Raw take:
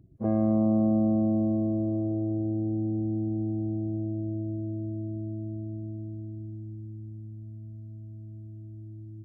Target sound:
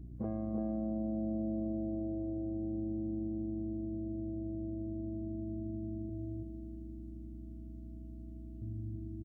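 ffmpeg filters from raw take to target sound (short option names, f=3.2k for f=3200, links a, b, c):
-filter_complex "[0:a]asettb=1/sr,asplit=3[a][b][c];[a]atrim=end=6.094[d];[b]atrim=start=6.09:end=8.62,asetpts=PTS-STARTPTS,afade=t=in:d=0.004:c=qsin,afade=t=out:st=2.526:d=0.004:c=qsin,highpass=f=610:p=1[e];[c]atrim=start=8.616[f];[d][e]acrossfade=d=0.004:c1=hsin:c2=qsin[g];[g][f]acrossfade=d=0.004:c1=qsin:c2=hsin,acompressor=threshold=-39dB:ratio=6,aeval=exprs='val(0)+0.00355*(sin(2*PI*60*n/s)+sin(2*PI*2*60*n/s)/2+sin(2*PI*3*60*n/s)/3+sin(2*PI*4*60*n/s)/4+sin(2*PI*5*60*n/s)/5)':c=same,aecho=1:1:337:0.562,volume=2.5dB"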